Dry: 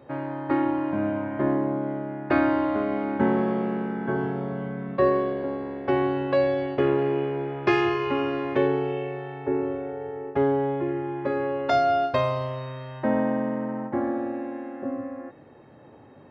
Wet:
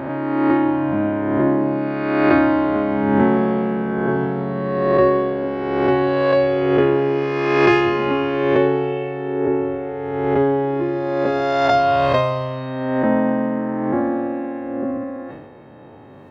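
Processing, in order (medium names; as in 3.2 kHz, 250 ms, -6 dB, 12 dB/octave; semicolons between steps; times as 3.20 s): reverse spectral sustain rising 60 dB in 1.73 s; decay stretcher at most 46 dB/s; trim +4.5 dB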